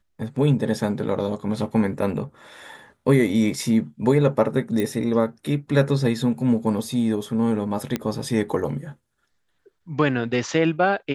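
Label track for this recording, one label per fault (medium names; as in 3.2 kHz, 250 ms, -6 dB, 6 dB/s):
4.800000	4.800000	pop -13 dBFS
7.960000	7.960000	pop -10 dBFS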